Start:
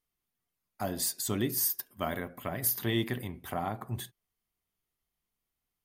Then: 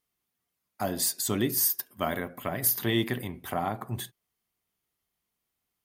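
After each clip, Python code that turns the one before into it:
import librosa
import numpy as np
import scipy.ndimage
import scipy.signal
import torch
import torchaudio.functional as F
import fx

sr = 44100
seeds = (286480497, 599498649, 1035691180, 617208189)

y = fx.highpass(x, sr, hz=100.0, slope=6)
y = F.gain(torch.from_numpy(y), 4.0).numpy()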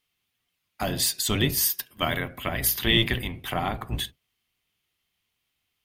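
y = fx.octave_divider(x, sr, octaves=1, level_db=2.0)
y = fx.peak_eq(y, sr, hz=2900.0, db=13.0, octaves=1.4)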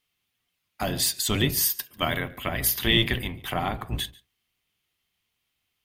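y = x + 10.0 ** (-23.5 / 20.0) * np.pad(x, (int(143 * sr / 1000.0), 0))[:len(x)]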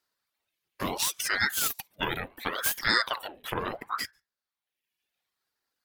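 y = fx.tracing_dist(x, sr, depth_ms=0.037)
y = fx.dereverb_blind(y, sr, rt60_s=1.1)
y = fx.ring_lfo(y, sr, carrier_hz=1000.0, swing_pct=75, hz=0.71)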